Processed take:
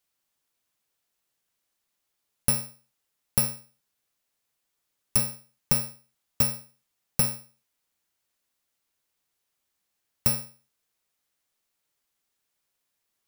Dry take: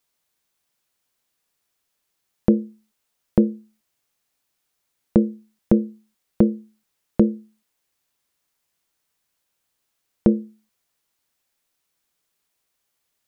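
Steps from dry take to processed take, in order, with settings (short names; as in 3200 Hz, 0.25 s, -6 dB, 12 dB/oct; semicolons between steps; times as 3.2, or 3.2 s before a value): FFT order left unsorted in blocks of 128 samples; compressor, threshold -14 dBFS, peak gain reduction 4.5 dB; gain -4 dB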